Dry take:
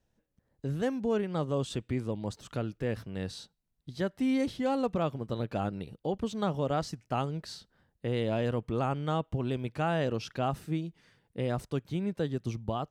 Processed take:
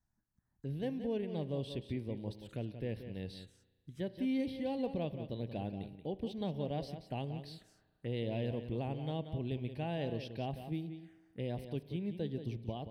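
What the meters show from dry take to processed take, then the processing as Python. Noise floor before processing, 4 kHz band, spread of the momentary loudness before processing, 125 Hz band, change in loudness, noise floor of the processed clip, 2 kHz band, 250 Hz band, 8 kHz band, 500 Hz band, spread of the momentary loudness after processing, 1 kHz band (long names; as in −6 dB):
−78 dBFS, −6.5 dB, 9 LU, −5.5 dB, −7.0 dB, −79 dBFS, −10.5 dB, −6.0 dB, below −15 dB, −7.5 dB, 9 LU, −11.5 dB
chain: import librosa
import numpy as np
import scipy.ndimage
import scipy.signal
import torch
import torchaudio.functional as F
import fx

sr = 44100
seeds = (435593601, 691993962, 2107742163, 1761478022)

y = x + 10.0 ** (-10.0 / 20.0) * np.pad(x, (int(180 * sr / 1000.0), 0))[:len(x)]
y = fx.env_phaser(y, sr, low_hz=490.0, high_hz=1300.0, full_db=-34.0)
y = fx.rev_spring(y, sr, rt60_s=1.5, pass_ms=(34,), chirp_ms=45, drr_db=16.5)
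y = y * librosa.db_to_amplitude(-6.0)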